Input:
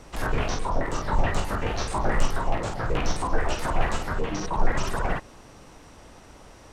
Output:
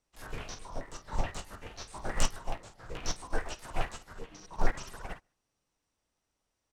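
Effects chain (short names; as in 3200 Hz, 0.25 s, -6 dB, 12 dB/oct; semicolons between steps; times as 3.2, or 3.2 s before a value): high shelf 2500 Hz +11 dB; on a send: echo 0.141 s -16.5 dB; on the sum: upward expander 2.5:1, over -36 dBFS; gain -3 dB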